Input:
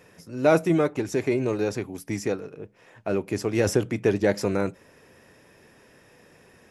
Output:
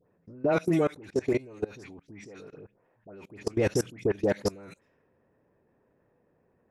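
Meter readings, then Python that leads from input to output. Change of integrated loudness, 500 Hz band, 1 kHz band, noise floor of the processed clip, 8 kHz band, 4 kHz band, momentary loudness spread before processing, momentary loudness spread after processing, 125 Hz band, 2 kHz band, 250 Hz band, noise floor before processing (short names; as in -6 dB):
-4.0 dB, -5.0 dB, -6.5 dB, -70 dBFS, -6.0 dB, -5.5 dB, 14 LU, 21 LU, -6.0 dB, -6.5 dB, -5.5 dB, -56 dBFS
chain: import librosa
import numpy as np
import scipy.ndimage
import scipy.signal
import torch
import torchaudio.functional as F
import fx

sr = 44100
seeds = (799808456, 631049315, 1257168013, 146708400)

y = fx.env_lowpass(x, sr, base_hz=910.0, full_db=-21.0)
y = fx.dispersion(y, sr, late='highs', ms=88.0, hz=1700.0)
y = fx.level_steps(y, sr, step_db=23)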